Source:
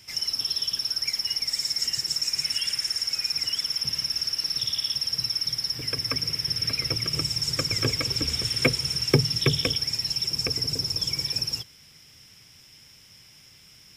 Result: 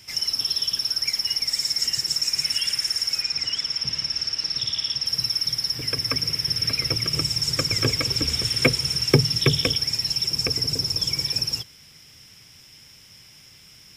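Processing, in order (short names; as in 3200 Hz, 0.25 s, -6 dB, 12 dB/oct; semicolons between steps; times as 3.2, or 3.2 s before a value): 3.22–5.06 LPF 6300 Hz 12 dB/oct; gain +3 dB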